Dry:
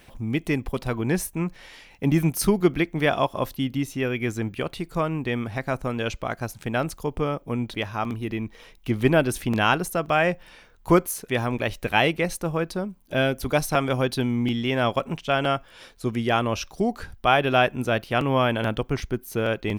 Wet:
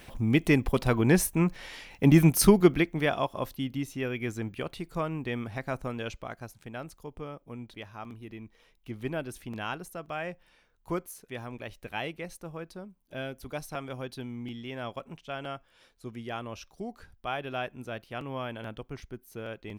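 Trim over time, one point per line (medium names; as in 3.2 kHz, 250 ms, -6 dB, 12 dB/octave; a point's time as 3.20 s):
2.49 s +2 dB
3.16 s -6.5 dB
5.83 s -6.5 dB
6.73 s -14.5 dB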